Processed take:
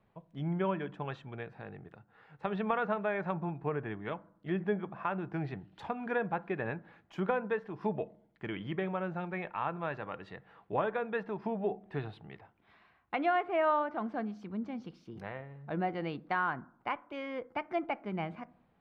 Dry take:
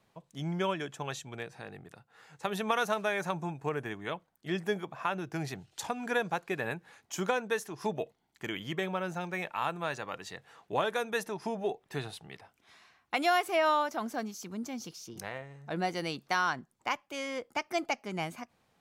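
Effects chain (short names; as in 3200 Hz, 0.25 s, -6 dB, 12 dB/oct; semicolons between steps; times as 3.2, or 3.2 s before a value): air absorption 450 m; treble ducked by the level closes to 2700 Hz, closed at -29 dBFS; low shelf 81 Hz +7 dB; on a send: reverb RT60 0.60 s, pre-delay 5 ms, DRR 17 dB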